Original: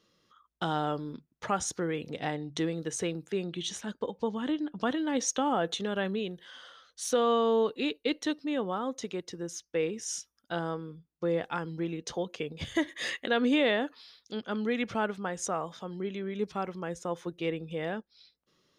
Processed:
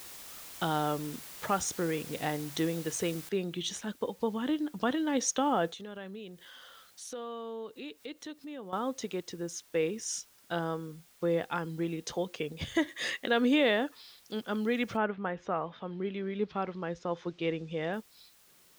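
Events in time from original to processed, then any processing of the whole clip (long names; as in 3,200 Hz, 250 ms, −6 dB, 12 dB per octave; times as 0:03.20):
0:03.29: noise floor change −47 dB −62 dB
0:05.69–0:08.73: downward compressor 2 to 1, threshold −49 dBFS
0:14.96–0:17.92: low-pass filter 2,600 Hz → 6,600 Hz 24 dB per octave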